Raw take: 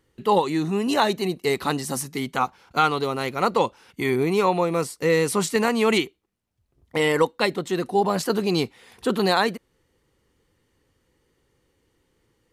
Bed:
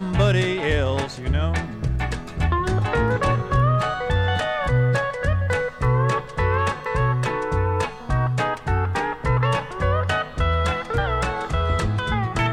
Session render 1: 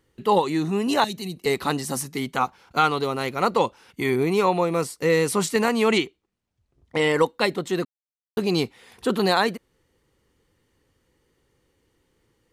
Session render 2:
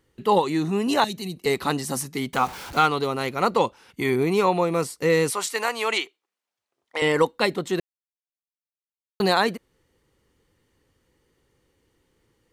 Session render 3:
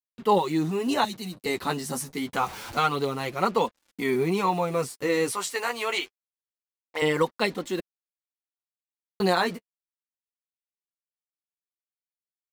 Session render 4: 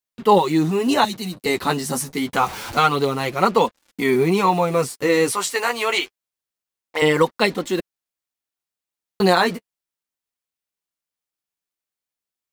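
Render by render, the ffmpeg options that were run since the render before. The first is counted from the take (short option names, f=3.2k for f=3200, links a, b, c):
-filter_complex "[0:a]asettb=1/sr,asplit=3[a][b][c];[a]atrim=end=1.044[d];[b]atrim=start=1.04:end=1.46,asetpts=PTS-STARTPTS,afade=t=in:d=0.004:c=qsin,afade=t=out:st=0.416:d=0.004:c=qsin,acrossover=split=210|3000[e][f][g];[f]acompressor=threshold=-40dB:ratio=5:attack=3.2:release=140:knee=2.83:detection=peak[h];[e][h][g]amix=inputs=3:normalize=0[i];[c]atrim=start=1.456[j];[d][i]acrossfade=d=0.004:c1=hsin:c2=qsin[k];[k][j]acrossfade=d=0.004:c1=qsin:c2=hsin,asettb=1/sr,asplit=3[l][m][n];[l]atrim=end=5.884[o];[m]atrim=start=5.88:end=7.17,asetpts=PTS-STARTPTS,afade=t=in:d=0.004:c=qsin,afade=t=out:st=1.286:d=0.004:c=qsin,lowpass=8.2k[p];[n]atrim=start=7.166[q];[o][p]acrossfade=d=0.004:c1=hsin:c2=qsin[r];[r][q]acrossfade=d=0.004:c1=qsin:c2=hsin,asplit=3[s][t][u];[s]atrim=end=7.85,asetpts=PTS-STARTPTS,afade=t=out:st=7.846:d=0.004:c=hsin[v];[t]atrim=start=7.85:end=8.37,asetpts=PTS-STARTPTS,volume=0[w];[u]atrim=start=8.37,asetpts=PTS-STARTPTS,afade=t=in:d=0.004:c=hsin[x];[v][w][x]concat=n=3:v=0:a=1"
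-filter_complex "[0:a]asettb=1/sr,asplit=3[a][b][c];[a]atrim=end=2.334[d];[b]atrim=start=2.33:end=2.86,asetpts=PTS-STARTPTS,afade=t=in:d=0.004:c=qsin,afade=t=out:st=0.526:d=0.004:c=qsin,aeval=exprs='val(0)+0.5*0.0224*sgn(val(0))':c=same[e];[c]atrim=start=2.856[f];[d][e]acrossfade=d=0.004:c1=hsin:c2=qsin[g];[g][f]acrossfade=d=0.004:c1=qsin:c2=hsin,asettb=1/sr,asplit=3[h][i][j];[h]atrim=end=5.304[k];[i]atrim=start=5.3:end=7.02,asetpts=PTS-STARTPTS,afade=t=in:d=0.004:c=qsin,afade=t=out:st=1.716:d=0.004:c=qsin,highpass=650[l];[j]atrim=start=7.016[m];[k][l]acrossfade=d=0.004:c1=hsin:c2=qsin[n];[n][m]acrossfade=d=0.004:c1=qsin:c2=hsin,asplit=3[o][p][q];[o]atrim=end=7.8,asetpts=PTS-STARTPTS,afade=t=out:st=7.796:d=0.004:c=hsin[r];[p]atrim=start=7.8:end=9.2,asetpts=PTS-STARTPTS,volume=0[s];[q]atrim=start=9.2,asetpts=PTS-STARTPTS,afade=t=in:d=0.004:c=hsin[t];[r][s][t]concat=n=3:v=0:a=1"
-af "acrusher=bits=6:mix=0:aa=0.5,flanger=delay=3.3:depth=9.2:regen=-13:speed=0.26:shape=triangular"
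-af "volume=7dB,alimiter=limit=-3dB:level=0:latency=1"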